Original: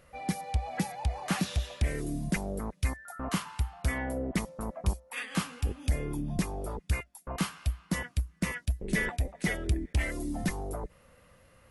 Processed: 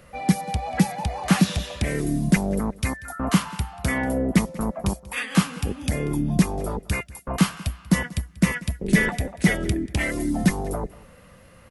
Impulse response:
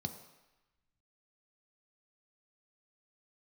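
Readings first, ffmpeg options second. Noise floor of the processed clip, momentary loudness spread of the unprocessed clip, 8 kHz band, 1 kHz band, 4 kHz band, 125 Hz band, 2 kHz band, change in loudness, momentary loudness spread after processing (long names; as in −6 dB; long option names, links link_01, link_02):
−50 dBFS, 5 LU, +8.5 dB, +8.5 dB, +8.5 dB, +8.0 dB, +8.5 dB, +9.0 dB, 8 LU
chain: -filter_complex "[0:a]aecho=1:1:188:0.0891,acrossover=split=100|2900[link_01][link_02][link_03];[link_01]acompressor=threshold=-39dB:ratio=6[link_04];[link_04][link_02][link_03]amix=inputs=3:normalize=0,equalizer=frequency=190:width=1.6:gain=5,volume=8.5dB"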